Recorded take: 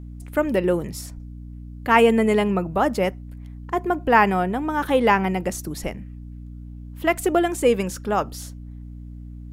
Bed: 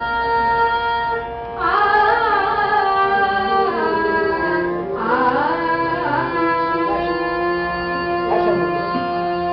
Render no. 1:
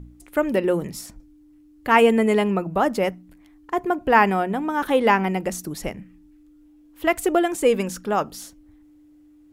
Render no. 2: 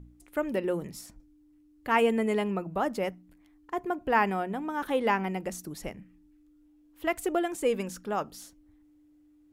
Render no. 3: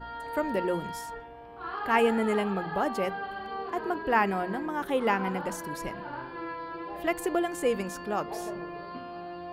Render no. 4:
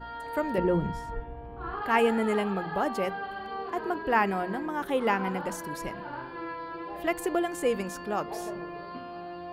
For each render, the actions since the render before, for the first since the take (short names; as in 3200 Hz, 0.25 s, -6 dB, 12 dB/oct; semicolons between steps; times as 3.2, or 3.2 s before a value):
de-hum 60 Hz, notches 4
gain -8.5 dB
add bed -19.5 dB
0.58–1.82 RIAA curve playback